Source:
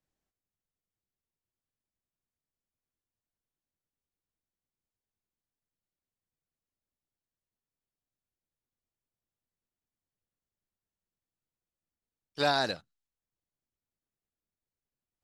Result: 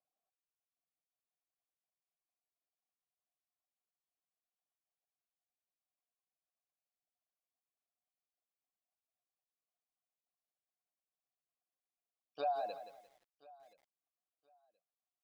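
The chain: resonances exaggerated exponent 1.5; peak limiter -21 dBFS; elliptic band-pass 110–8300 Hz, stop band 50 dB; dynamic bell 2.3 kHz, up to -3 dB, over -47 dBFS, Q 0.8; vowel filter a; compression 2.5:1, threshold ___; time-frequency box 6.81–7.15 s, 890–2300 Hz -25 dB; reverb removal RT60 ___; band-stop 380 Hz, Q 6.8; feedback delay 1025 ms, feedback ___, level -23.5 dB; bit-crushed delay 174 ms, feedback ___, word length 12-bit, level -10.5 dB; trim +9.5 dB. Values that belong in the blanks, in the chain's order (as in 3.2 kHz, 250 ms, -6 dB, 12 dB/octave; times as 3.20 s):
-46 dBFS, 1.1 s, 23%, 35%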